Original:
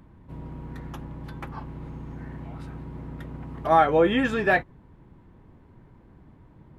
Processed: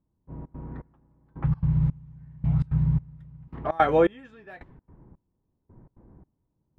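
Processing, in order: 1.44–3.48 resonant low shelf 210 Hz +12.5 dB, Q 3; low-pass opened by the level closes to 850 Hz, open at -16.5 dBFS; step gate "...xx.xxx..." 166 bpm -24 dB

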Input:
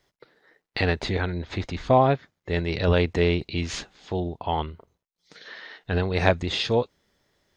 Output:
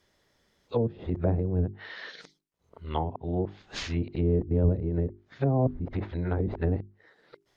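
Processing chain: whole clip reversed; treble ducked by the level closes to 340 Hz, closed at -21 dBFS; notches 50/100/150/200/250/300/350/400 Hz

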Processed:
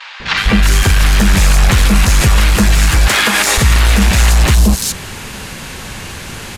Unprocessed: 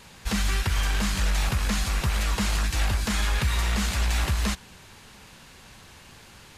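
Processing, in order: 2.88–3.38 HPF 350 Hz 12 dB/oct; soft clip -23 dBFS, distortion -14 dB; vibrato 0.48 Hz 18 cents; three bands offset in time mids, lows, highs 0.2/0.37 s, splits 910/4300 Hz; maximiser +23.5 dB; gain -1 dB

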